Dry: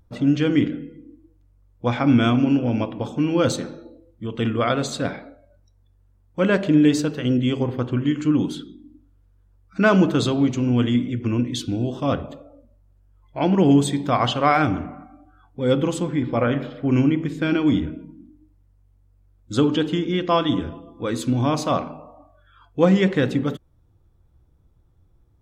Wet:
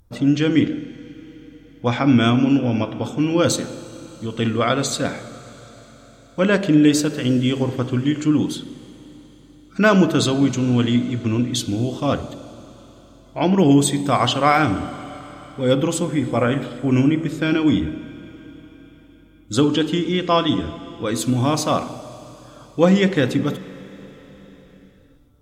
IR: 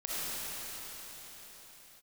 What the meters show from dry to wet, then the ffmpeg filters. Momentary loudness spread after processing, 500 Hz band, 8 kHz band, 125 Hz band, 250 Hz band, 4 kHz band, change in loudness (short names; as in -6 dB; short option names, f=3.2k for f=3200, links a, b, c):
19 LU, +2.0 dB, +8.5 dB, +1.5 dB, +1.5 dB, +4.5 dB, +2.0 dB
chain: -filter_complex "[0:a]aemphasis=mode=production:type=cd,asplit=2[a][b];[1:a]atrim=start_sample=2205[c];[b][c]afir=irnorm=-1:irlink=0,volume=-21.5dB[d];[a][d]amix=inputs=2:normalize=0,volume=1.5dB"